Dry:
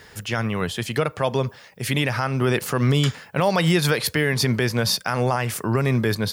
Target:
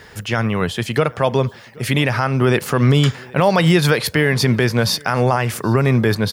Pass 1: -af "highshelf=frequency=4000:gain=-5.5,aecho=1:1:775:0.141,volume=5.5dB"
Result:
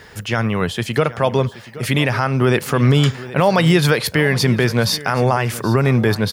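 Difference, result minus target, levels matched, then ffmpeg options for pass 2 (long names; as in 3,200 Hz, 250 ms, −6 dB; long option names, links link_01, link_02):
echo-to-direct +8.5 dB
-af "highshelf=frequency=4000:gain=-5.5,aecho=1:1:775:0.0531,volume=5.5dB"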